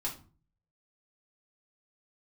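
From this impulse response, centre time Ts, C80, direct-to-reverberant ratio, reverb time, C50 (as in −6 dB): 18 ms, 17.0 dB, −4.5 dB, 0.40 s, 10.5 dB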